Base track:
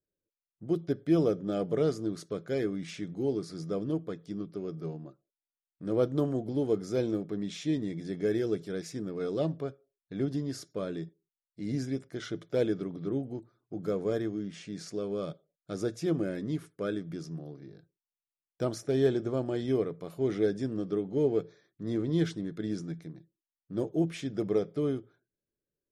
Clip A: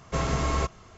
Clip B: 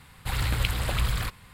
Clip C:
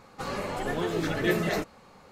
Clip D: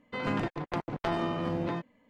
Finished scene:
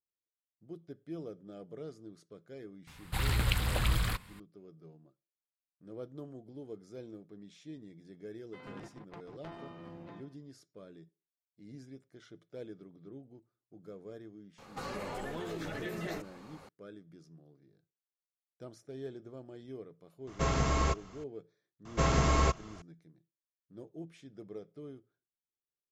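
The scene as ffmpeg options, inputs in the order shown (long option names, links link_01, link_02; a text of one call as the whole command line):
ffmpeg -i bed.wav -i cue0.wav -i cue1.wav -i cue2.wav -i cue3.wav -filter_complex "[1:a]asplit=2[link_01][link_02];[0:a]volume=-17dB[link_03];[2:a]equalizer=frequency=210:width=1.5:gain=2.5[link_04];[4:a]aecho=1:1:137:0.211[link_05];[3:a]acompressor=threshold=-35dB:ratio=6:attack=3.2:release=140:knee=1:detection=peak[link_06];[link_04]atrim=end=1.53,asetpts=PTS-STARTPTS,volume=-3.5dB,afade=type=in:duration=0.004:curve=hsin,afade=type=out:start_time=1.526:duration=0.004:curve=hsin,adelay=2870[link_07];[link_05]atrim=end=2.09,asetpts=PTS-STARTPTS,volume=-17.5dB,afade=type=in:duration=0.004:curve=hsin,afade=type=out:start_time=2.086:duration=0.004:curve=hsin,adelay=8400[link_08];[link_06]atrim=end=2.11,asetpts=PTS-STARTPTS,volume=-1dB,afade=type=in:duration=0.004:curve=hsin,afade=type=out:start_time=2.106:duration=0.004:curve=hsin,adelay=14580[link_09];[link_01]atrim=end=0.97,asetpts=PTS-STARTPTS,volume=-3dB,afade=type=in:duration=0.004:curve=hsin,afade=type=out:start_time=0.966:duration=0.004:curve=hsin,adelay=20270[link_10];[link_02]atrim=end=0.97,asetpts=PTS-STARTPTS,volume=-0.5dB,afade=type=in:duration=0.004:curve=hsin,afade=type=out:start_time=0.966:duration=0.004:curve=hsin,adelay=21850[link_11];[link_03][link_07][link_08][link_09][link_10][link_11]amix=inputs=6:normalize=0" out.wav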